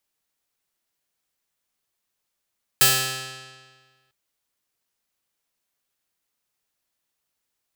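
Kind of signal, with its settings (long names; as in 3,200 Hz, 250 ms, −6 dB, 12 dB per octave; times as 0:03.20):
Karplus-Strong string C3, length 1.30 s, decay 1.59 s, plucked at 0.44, bright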